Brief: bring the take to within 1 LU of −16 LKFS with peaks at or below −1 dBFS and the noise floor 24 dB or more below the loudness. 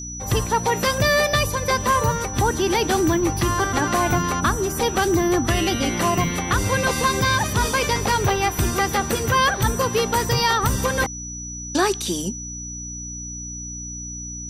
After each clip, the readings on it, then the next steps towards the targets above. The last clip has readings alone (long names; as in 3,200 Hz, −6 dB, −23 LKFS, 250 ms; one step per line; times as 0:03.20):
mains hum 60 Hz; hum harmonics up to 300 Hz; level of the hum −33 dBFS; interfering tone 5,900 Hz; level of the tone −32 dBFS; integrated loudness −21.0 LKFS; sample peak −8.0 dBFS; target loudness −16.0 LKFS
→ hum removal 60 Hz, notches 5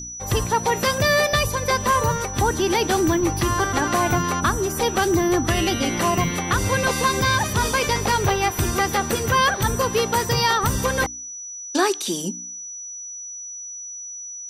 mains hum none found; interfering tone 5,900 Hz; level of the tone −32 dBFS
→ notch filter 5,900 Hz, Q 30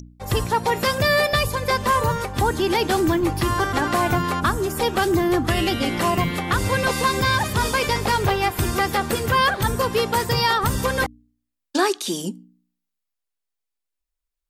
interfering tone none found; integrated loudness −21.0 LKFS; sample peak −8.0 dBFS; target loudness −16.0 LKFS
→ level +5 dB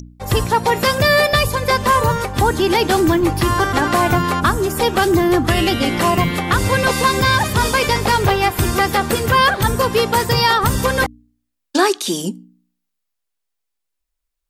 integrated loudness −16.0 LKFS; sample peak −3.0 dBFS; background noise floor −77 dBFS